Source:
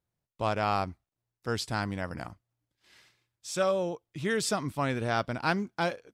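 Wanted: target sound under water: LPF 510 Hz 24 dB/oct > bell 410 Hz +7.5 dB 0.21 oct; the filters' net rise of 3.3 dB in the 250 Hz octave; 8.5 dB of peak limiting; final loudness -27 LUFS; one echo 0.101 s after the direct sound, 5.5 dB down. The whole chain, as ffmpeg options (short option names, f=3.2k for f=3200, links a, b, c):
-af "equalizer=f=250:t=o:g=4,alimiter=limit=-21.5dB:level=0:latency=1,lowpass=f=510:w=0.5412,lowpass=f=510:w=1.3066,equalizer=f=410:t=o:w=0.21:g=7.5,aecho=1:1:101:0.531,volume=7dB"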